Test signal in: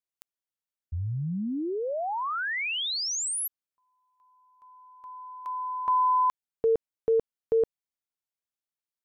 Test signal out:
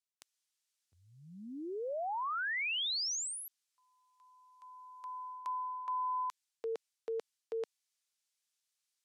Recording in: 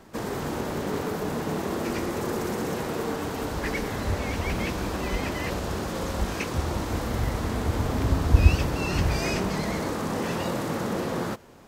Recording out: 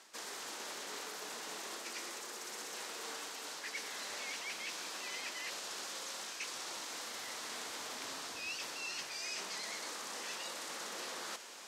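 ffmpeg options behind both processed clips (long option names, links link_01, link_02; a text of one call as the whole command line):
ffmpeg -i in.wav -af "aderivative,areverse,acompressor=threshold=-50dB:ratio=8:attack=0.49:release=804:detection=peak,areverse,highpass=230,lowpass=6600,volume=16.5dB" out.wav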